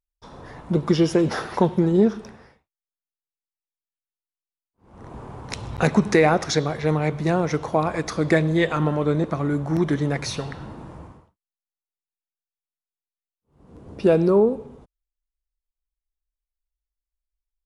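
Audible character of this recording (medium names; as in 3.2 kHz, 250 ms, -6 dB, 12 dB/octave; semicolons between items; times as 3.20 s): noise floor -94 dBFS; spectral tilt -6.0 dB/octave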